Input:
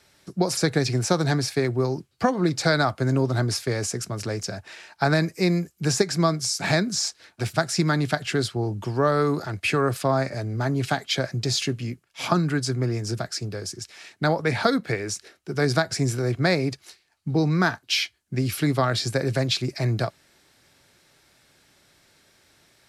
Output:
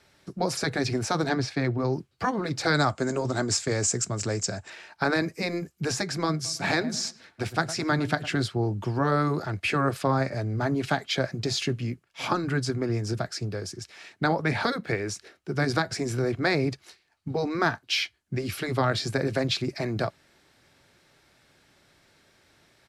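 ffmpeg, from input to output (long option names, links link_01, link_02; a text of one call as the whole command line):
ffmpeg -i in.wav -filter_complex "[0:a]asettb=1/sr,asplit=3[link_01][link_02][link_03];[link_01]atrim=end=1.294[link_04];[link_02]atrim=start=1.29:end=1.93,asetpts=PTS-STARTPTS,afade=type=in:duration=0.004:curve=qsin,afade=type=out:start_time=0.636:duration=0.004:curve=qsin,lowpass=5900[link_05];[link_03]atrim=start=1.926[link_06];[link_04][link_05]acrossfade=duration=0.004:curve1=hsin:curve2=qsin[link_07];[link_07][link_06]acrossfade=duration=0.004:curve1=qsin:curve2=hsin,asettb=1/sr,asplit=3[link_08][link_09][link_10];[link_08]atrim=end=2.744[link_11];[link_09]atrim=start=2.74:end=4.7,asetpts=PTS-STARTPTS,afade=type=in:duration=0.004:curve=qsin,afade=type=out:start_time=1.956:duration=0.004:curve=qsin,lowpass=frequency=7500:width_type=q:width=6.7[link_12];[link_10]atrim=start=4.696[link_13];[link_11][link_12]acrossfade=duration=0.004:curve1=hsin:curve2=qsin[link_14];[link_14][link_13]acrossfade=duration=0.004:curve1=qsin:curve2=hsin,asplit=3[link_15][link_16][link_17];[link_15]afade=type=out:start_time=6.44:duration=0.02[link_18];[link_16]asplit=2[link_19][link_20];[link_20]adelay=109,lowpass=frequency=1900:poles=1,volume=-16dB,asplit=2[link_21][link_22];[link_22]adelay=109,lowpass=frequency=1900:poles=1,volume=0.33,asplit=2[link_23][link_24];[link_24]adelay=109,lowpass=frequency=1900:poles=1,volume=0.33[link_25];[link_19][link_21][link_23][link_25]amix=inputs=4:normalize=0,afade=type=in:start_time=6.44:duration=0.02,afade=type=out:start_time=8.35:duration=0.02[link_26];[link_17]afade=type=in:start_time=8.35:duration=0.02[link_27];[link_18][link_26][link_27]amix=inputs=3:normalize=0,afftfilt=real='re*lt(hypot(re,im),0.631)':imag='im*lt(hypot(re,im),0.631)':win_size=1024:overlap=0.75,highshelf=frequency=5000:gain=-8.5" out.wav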